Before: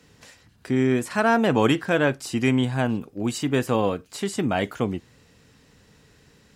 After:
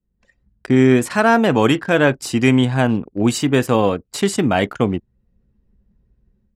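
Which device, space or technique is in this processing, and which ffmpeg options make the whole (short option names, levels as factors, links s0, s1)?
voice memo with heavy noise removal: -af "anlmdn=0.631,dynaudnorm=f=170:g=3:m=4.73,volume=0.891"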